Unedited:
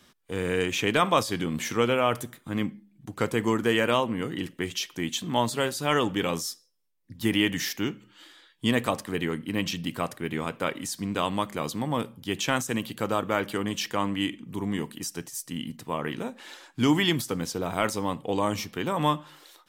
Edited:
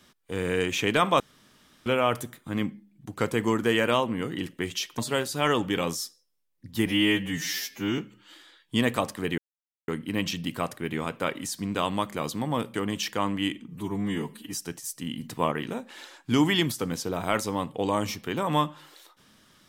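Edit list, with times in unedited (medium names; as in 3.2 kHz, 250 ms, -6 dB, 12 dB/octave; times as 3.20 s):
1.20–1.86 s: room tone
4.98–5.44 s: delete
7.32–7.88 s: stretch 2×
9.28 s: insert silence 0.50 s
12.14–13.52 s: delete
14.46–15.03 s: stretch 1.5×
15.72–16.01 s: gain +5 dB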